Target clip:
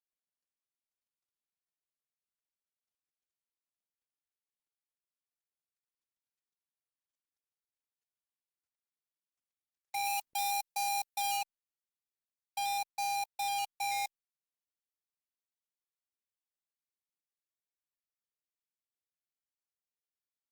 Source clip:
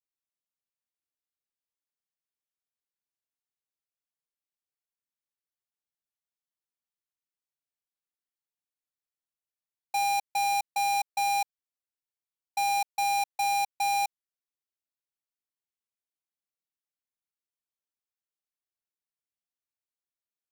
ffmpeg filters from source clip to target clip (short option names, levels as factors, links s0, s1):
-filter_complex "[0:a]asplit=3[s0][s1][s2];[s0]afade=t=out:st=10.04:d=0.02[s3];[s1]highshelf=f=8000:g=9,afade=t=in:st=10.04:d=0.02,afade=t=out:st=11.36:d=0.02[s4];[s2]afade=t=in:st=11.36:d=0.02[s5];[s3][s4][s5]amix=inputs=3:normalize=0,acrossover=split=420|1400[s6][s7][s8];[s7]acrusher=samples=12:mix=1:aa=0.000001:lfo=1:lforange=7.2:lforate=0.44[s9];[s6][s9][s8]amix=inputs=3:normalize=0,volume=0.447" -ar 48000 -c:a libopus -b:a 32k